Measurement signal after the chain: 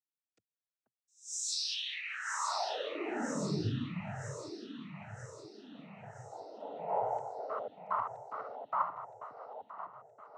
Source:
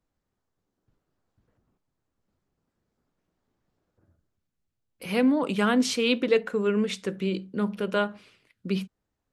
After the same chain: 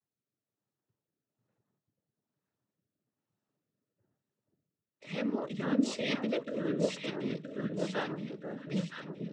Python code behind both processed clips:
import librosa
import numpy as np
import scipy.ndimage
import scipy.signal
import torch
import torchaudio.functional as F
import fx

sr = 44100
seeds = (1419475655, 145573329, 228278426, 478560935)

y = fx.echo_alternate(x, sr, ms=485, hz=1200.0, feedback_pct=72, wet_db=-3.5)
y = fx.noise_vocoder(y, sr, seeds[0], bands=12)
y = fx.rotary(y, sr, hz=1.1)
y = y * librosa.db_to_amplitude(-8.0)